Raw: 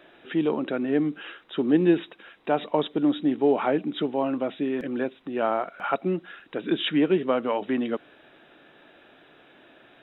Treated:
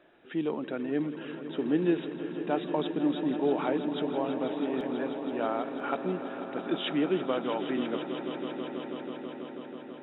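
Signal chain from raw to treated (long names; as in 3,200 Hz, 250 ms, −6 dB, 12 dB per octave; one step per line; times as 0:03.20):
echo that builds up and dies away 163 ms, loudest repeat 5, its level −13 dB
one half of a high-frequency compander decoder only
level −6.5 dB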